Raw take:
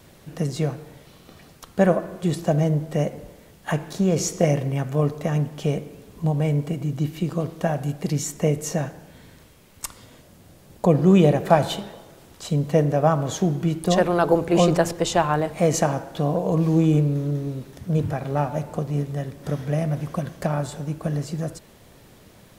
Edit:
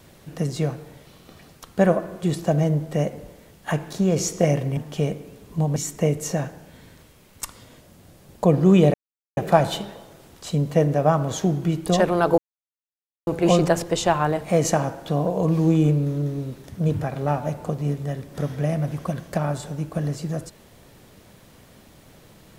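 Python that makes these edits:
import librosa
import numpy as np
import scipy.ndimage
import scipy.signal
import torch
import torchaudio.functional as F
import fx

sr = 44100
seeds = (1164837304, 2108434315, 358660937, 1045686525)

y = fx.edit(x, sr, fx.cut(start_s=4.77, length_s=0.66),
    fx.cut(start_s=6.42, length_s=1.75),
    fx.insert_silence(at_s=11.35, length_s=0.43),
    fx.insert_silence(at_s=14.36, length_s=0.89), tone=tone)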